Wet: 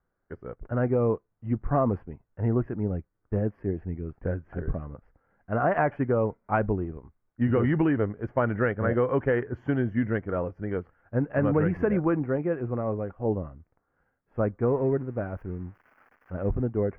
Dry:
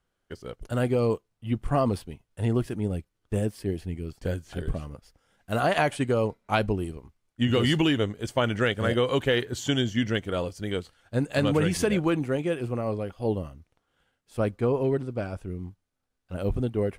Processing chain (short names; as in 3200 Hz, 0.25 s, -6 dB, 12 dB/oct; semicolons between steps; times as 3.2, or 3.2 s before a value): 14.63–16.64 switching spikes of -30 dBFS; inverse Chebyshev low-pass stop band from 3500 Hz, stop band 40 dB